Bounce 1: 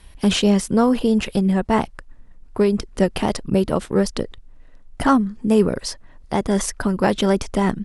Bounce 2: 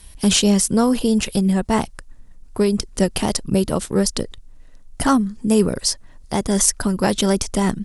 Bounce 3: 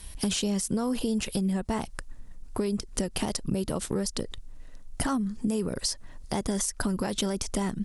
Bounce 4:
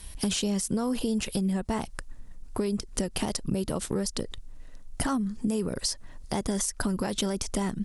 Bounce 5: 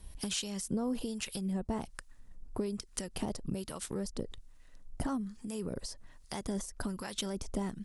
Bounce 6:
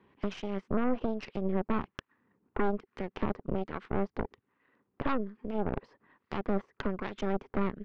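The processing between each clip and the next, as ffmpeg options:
ffmpeg -i in.wav -af "bass=frequency=250:gain=3,treble=frequency=4000:gain=13,volume=-1.5dB" out.wav
ffmpeg -i in.wav -af "alimiter=limit=-13dB:level=0:latency=1:release=141,acompressor=threshold=-25dB:ratio=6" out.wav
ffmpeg -i in.wav -af anull out.wav
ffmpeg -i in.wav -filter_complex "[0:a]acrossover=split=950[link_01][link_02];[link_01]aeval=exprs='val(0)*(1-0.7/2+0.7/2*cos(2*PI*1.2*n/s))':channel_layout=same[link_03];[link_02]aeval=exprs='val(0)*(1-0.7/2-0.7/2*cos(2*PI*1.2*n/s))':channel_layout=same[link_04];[link_03][link_04]amix=inputs=2:normalize=0,volume=-4.5dB" out.wav
ffmpeg -i in.wav -af "highpass=frequency=150:width=0.5412,highpass=frequency=150:width=1.3066,equalizer=frequency=160:width_type=q:width=4:gain=-7,equalizer=frequency=400:width_type=q:width=4:gain=6,equalizer=frequency=640:width_type=q:width=4:gain=-9,equalizer=frequency=1100:width_type=q:width=4:gain=4,lowpass=frequency=2300:width=0.5412,lowpass=frequency=2300:width=1.3066,aeval=exprs='0.0841*(cos(1*acos(clip(val(0)/0.0841,-1,1)))-cos(1*PI/2))+0.0299*(cos(6*acos(clip(val(0)/0.0841,-1,1)))-cos(6*PI/2))':channel_layout=same,volume=1dB" out.wav

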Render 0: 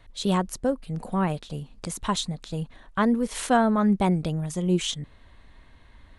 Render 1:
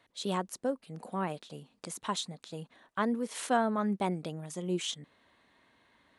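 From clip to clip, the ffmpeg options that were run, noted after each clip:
ffmpeg -i in.wav -af "highpass=230,volume=-6.5dB" out.wav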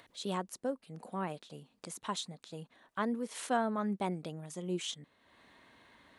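ffmpeg -i in.wav -af "acompressor=mode=upward:threshold=-48dB:ratio=2.5,volume=-3.5dB" out.wav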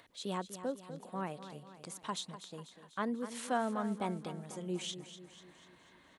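ffmpeg -i in.wav -af "aecho=1:1:246|492|738|984|1230|1476:0.251|0.136|0.0732|0.0396|0.0214|0.0115,volume=-2dB" out.wav

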